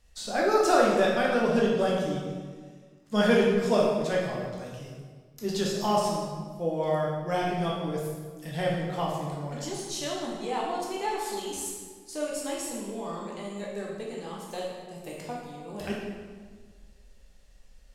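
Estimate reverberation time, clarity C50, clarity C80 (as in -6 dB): 1.6 s, 0.5 dB, 3.0 dB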